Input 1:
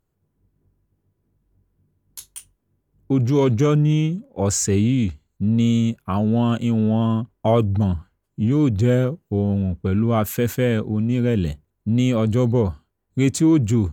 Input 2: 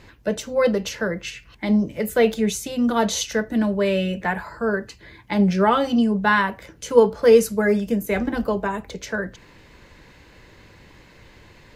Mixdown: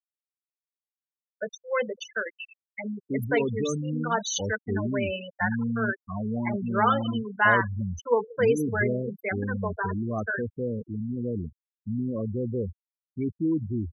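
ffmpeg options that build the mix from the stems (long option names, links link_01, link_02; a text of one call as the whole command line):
ffmpeg -i stem1.wav -i stem2.wav -filter_complex "[0:a]lowpass=frequency=4700:width=0.5412,lowpass=frequency=4700:width=1.3066,equalizer=frequency=140:width_type=o:width=0.54:gain=-5.5,bandreject=frequency=72.11:width_type=h:width=4,bandreject=frequency=144.22:width_type=h:width=4,volume=-9.5dB[link_01];[1:a]highpass=frequency=1000:poles=1,equalizer=frequency=1400:width_type=o:width=0.62:gain=4,adelay=1150,volume=-2dB,asplit=2[link_02][link_03];[link_03]volume=-21.5dB,aecho=0:1:181|362|543|724|905|1086:1|0.43|0.185|0.0795|0.0342|0.0147[link_04];[link_01][link_02][link_04]amix=inputs=3:normalize=0,afftfilt=real='re*gte(hypot(re,im),0.0794)':imag='im*gte(hypot(re,im),0.0794)':win_size=1024:overlap=0.75" out.wav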